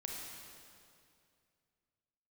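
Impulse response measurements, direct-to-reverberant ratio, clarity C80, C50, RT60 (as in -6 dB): -1.5 dB, 1.5 dB, 0.0 dB, 2.4 s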